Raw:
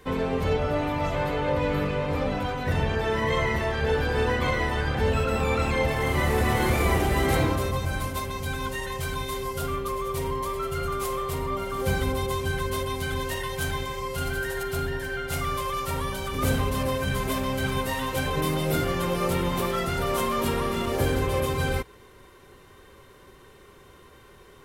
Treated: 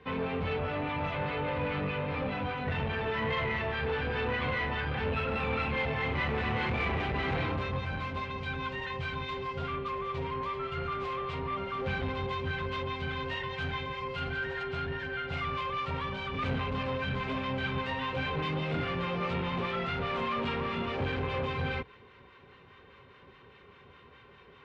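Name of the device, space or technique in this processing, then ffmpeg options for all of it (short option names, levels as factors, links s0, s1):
guitar amplifier with harmonic tremolo: -filter_complex "[0:a]acrossover=split=870[s0][s1];[s0]aeval=exprs='val(0)*(1-0.5/2+0.5/2*cos(2*PI*4.9*n/s))':c=same[s2];[s1]aeval=exprs='val(0)*(1-0.5/2-0.5/2*cos(2*PI*4.9*n/s))':c=same[s3];[s2][s3]amix=inputs=2:normalize=0,asoftclip=type=tanh:threshold=0.0562,highpass=77,equalizer=f=340:t=q:w=4:g=-7,equalizer=f=610:t=q:w=4:g=-4,equalizer=f=2500:t=q:w=4:g=5,lowpass=f=3700:w=0.5412,lowpass=f=3700:w=1.3066"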